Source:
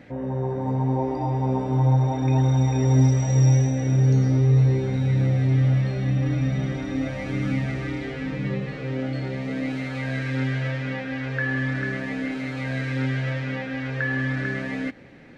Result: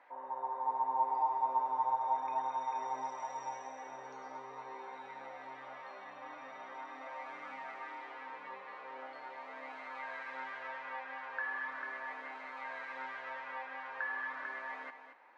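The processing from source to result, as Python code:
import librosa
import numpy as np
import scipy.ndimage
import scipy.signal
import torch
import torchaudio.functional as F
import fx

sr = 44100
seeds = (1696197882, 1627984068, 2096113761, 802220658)

p1 = fx.ladder_highpass(x, sr, hz=910.0, resonance_pct=75)
p2 = fx.tilt_eq(p1, sr, slope=-4.5)
p3 = p2 + fx.echo_single(p2, sr, ms=226, db=-9.5, dry=0)
y = p3 * 10.0 ** (1.5 / 20.0)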